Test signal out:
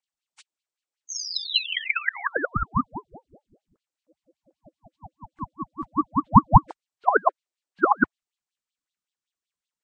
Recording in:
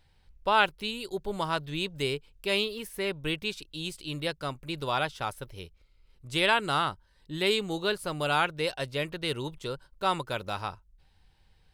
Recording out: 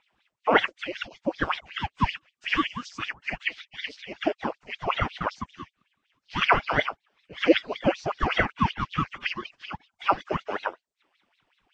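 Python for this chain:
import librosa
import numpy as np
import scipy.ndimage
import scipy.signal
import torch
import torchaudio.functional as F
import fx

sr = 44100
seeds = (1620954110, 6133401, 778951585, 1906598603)

y = fx.freq_compress(x, sr, knee_hz=1400.0, ratio=1.5)
y = fx.filter_lfo_highpass(y, sr, shape='sine', hz=5.3, low_hz=410.0, high_hz=3700.0, q=6.4)
y = fx.ring_lfo(y, sr, carrier_hz=410.0, swing_pct=80, hz=5.0)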